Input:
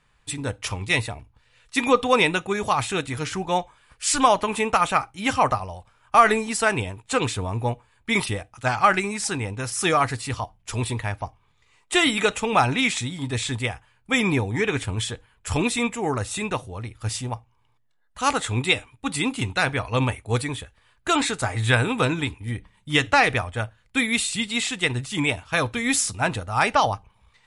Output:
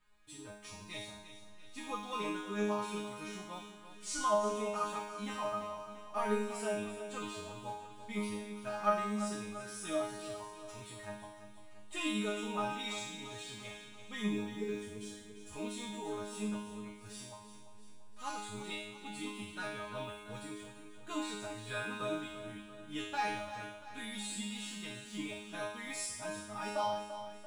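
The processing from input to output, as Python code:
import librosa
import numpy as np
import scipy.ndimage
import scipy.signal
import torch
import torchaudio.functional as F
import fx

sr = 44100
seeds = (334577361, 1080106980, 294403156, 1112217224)

y = fx.law_mismatch(x, sr, coded='mu')
y = fx.dynamic_eq(y, sr, hz=2100.0, q=2.4, threshold_db=-37.0, ratio=4.0, max_db=-6)
y = fx.hpss(y, sr, part='harmonic', gain_db=7)
y = fx.band_shelf(y, sr, hz=1500.0, db=-8.0, octaves=2.7, at=(14.55, 15.53))
y = fx.resonator_bank(y, sr, root=56, chord='fifth', decay_s=0.85)
y = fx.echo_feedback(y, sr, ms=341, feedback_pct=54, wet_db=-11.5)
y = F.gain(torch.from_numpy(y), 1.0).numpy()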